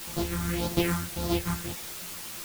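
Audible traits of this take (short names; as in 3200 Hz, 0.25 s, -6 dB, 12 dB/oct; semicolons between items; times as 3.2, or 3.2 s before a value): a buzz of ramps at a fixed pitch in blocks of 256 samples; phasing stages 4, 1.8 Hz, lowest notch 530–2200 Hz; a quantiser's noise floor 6-bit, dither triangular; a shimmering, thickened sound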